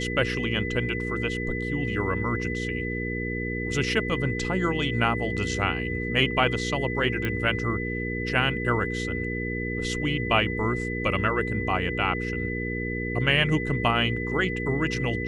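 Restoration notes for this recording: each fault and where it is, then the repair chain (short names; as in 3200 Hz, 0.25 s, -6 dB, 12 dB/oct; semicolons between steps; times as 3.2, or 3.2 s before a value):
hum 60 Hz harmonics 8 -31 dBFS
tone 2000 Hz -32 dBFS
7.25 pop -15 dBFS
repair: de-click; notch 2000 Hz, Q 30; de-hum 60 Hz, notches 8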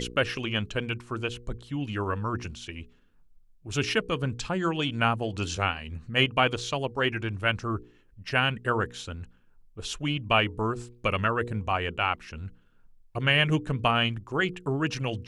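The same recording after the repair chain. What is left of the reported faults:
none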